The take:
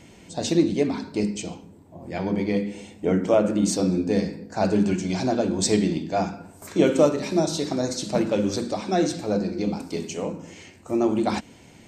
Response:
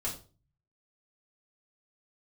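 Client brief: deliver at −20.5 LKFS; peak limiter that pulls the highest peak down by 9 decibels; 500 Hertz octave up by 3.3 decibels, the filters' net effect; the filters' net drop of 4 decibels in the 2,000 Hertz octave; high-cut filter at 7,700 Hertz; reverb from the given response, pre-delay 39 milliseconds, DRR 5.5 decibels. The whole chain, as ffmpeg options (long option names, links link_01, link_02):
-filter_complex "[0:a]lowpass=7700,equalizer=frequency=500:width_type=o:gain=4.5,equalizer=frequency=2000:width_type=o:gain=-5.5,alimiter=limit=-13dB:level=0:latency=1,asplit=2[link_01][link_02];[1:a]atrim=start_sample=2205,adelay=39[link_03];[link_02][link_03]afir=irnorm=-1:irlink=0,volume=-8.5dB[link_04];[link_01][link_04]amix=inputs=2:normalize=0,volume=2.5dB"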